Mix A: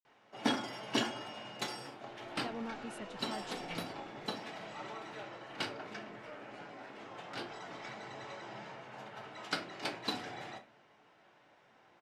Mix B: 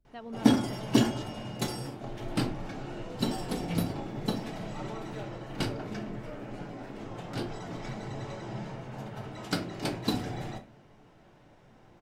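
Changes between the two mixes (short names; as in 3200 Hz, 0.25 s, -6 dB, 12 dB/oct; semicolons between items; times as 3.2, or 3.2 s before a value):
speech: entry -2.30 s; background: remove band-pass 2000 Hz, Q 0.53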